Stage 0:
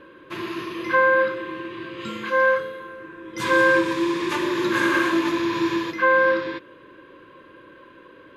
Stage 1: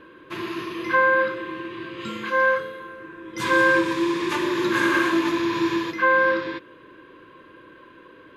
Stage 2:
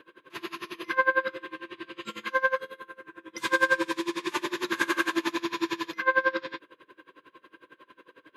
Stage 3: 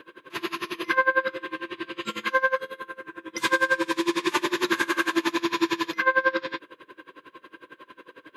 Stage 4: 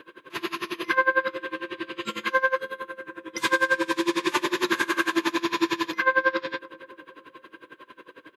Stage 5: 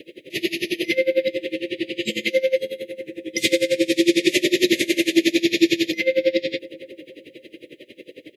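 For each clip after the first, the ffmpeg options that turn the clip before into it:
ffmpeg -i in.wav -af "bandreject=frequency=550:width=12" out.wav
ffmpeg -i in.wav -af "highpass=frequency=390:poles=1,highshelf=frequency=4200:gain=6,aeval=exprs='val(0)*pow(10,-24*(0.5-0.5*cos(2*PI*11*n/s))/20)':channel_layout=same" out.wav
ffmpeg -i in.wav -af "alimiter=limit=-17dB:level=0:latency=1:release=370,volume=6.5dB" out.wav
ffmpeg -i in.wav -filter_complex "[0:a]asplit=2[link_01][link_02];[link_02]adelay=283,lowpass=frequency=1200:poles=1,volume=-15.5dB,asplit=2[link_03][link_04];[link_04]adelay=283,lowpass=frequency=1200:poles=1,volume=0.48,asplit=2[link_05][link_06];[link_06]adelay=283,lowpass=frequency=1200:poles=1,volume=0.48,asplit=2[link_07][link_08];[link_08]adelay=283,lowpass=frequency=1200:poles=1,volume=0.48[link_09];[link_01][link_03][link_05][link_07][link_09]amix=inputs=5:normalize=0" out.wav
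ffmpeg -i in.wav -af "asuperstop=centerf=1100:order=20:qfactor=0.88,volume=8.5dB" out.wav

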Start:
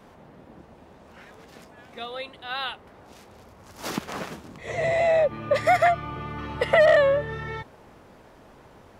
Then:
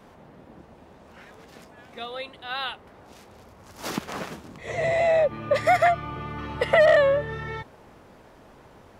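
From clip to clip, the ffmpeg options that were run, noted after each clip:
ffmpeg -i in.wav -af anull out.wav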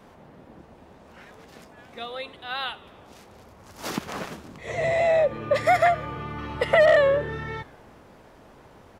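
ffmpeg -i in.wav -filter_complex "[0:a]asplit=6[link_01][link_02][link_03][link_04][link_05][link_06];[link_02]adelay=88,afreqshift=-74,volume=-21dB[link_07];[link_03]adelay=176,afreqshift=-148,volume=-24.9dB[link_08];[link_04]adelay=264,afreqshift=-222,volume=-28.8dB[link_09];[link_05]adelay=352,afreqshift=-296,volume=-32.6dB[link_10];[link_06]adelay=440,afreqshift=-370,volume=-36.5dB[link_11];[link_01][link_07][link_08][link_09][link_10][link_11]amix=inputs=6:normalize=0" out.wav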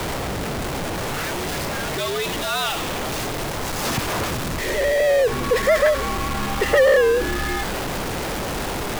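ffmpeg -i in.wav -af "aeval=exprs='val(0)+0.5*0.0944*sgn(val(0))':channel_layout=same,afreqshift=-87" out.wav

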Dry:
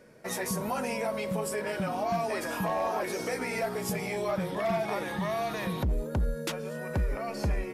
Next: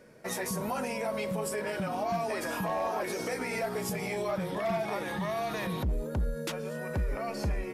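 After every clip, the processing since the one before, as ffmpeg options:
ffmpeg -i in.wav -af "alimiter=limit=-24dB:level=0:latency=1:release=69" out.wav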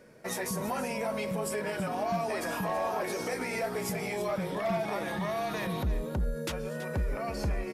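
ffmpeg -i in.wav -af "aecho=1:1:328:0.224" out.wav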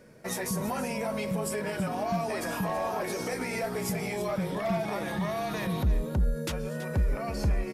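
ffmpeg -i in.wav -af "bass=frequency=250:gain=5,treble=frequency=4000:gain=2" out.wav

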